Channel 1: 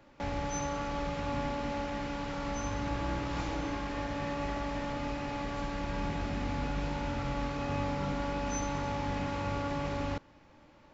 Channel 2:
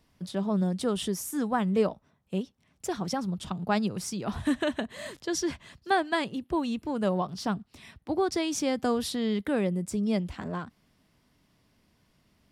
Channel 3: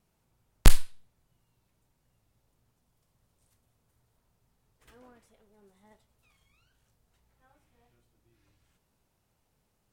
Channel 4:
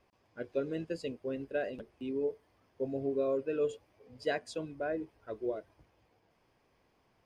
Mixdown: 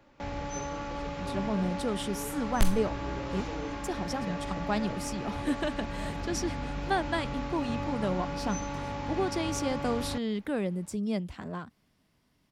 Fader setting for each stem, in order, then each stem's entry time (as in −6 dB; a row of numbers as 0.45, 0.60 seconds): −1.5, −3.5, −9.0, −12.0 decibels; 0.00, 1.00, 1.95, 0.00 seconds